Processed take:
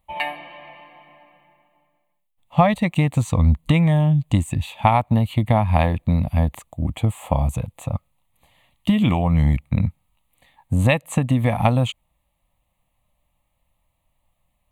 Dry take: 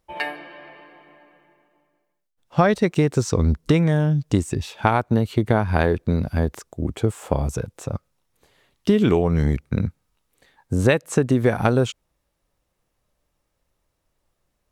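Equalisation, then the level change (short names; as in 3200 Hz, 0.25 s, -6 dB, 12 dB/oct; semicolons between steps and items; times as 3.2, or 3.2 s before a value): fixed phaser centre 1500 Hz, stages 6; +4.5 dB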